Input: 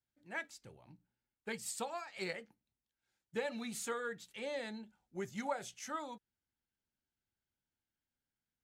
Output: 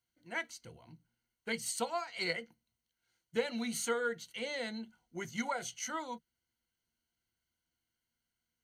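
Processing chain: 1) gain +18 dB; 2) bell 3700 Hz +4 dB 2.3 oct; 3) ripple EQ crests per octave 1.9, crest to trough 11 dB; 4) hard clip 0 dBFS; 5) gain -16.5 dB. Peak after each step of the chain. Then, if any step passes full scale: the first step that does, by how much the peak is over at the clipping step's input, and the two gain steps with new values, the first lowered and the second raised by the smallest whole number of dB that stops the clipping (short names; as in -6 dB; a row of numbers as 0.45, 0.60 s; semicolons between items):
-7.5, -5.5, -3.0, -3.0, -19.5 dBFS; no overload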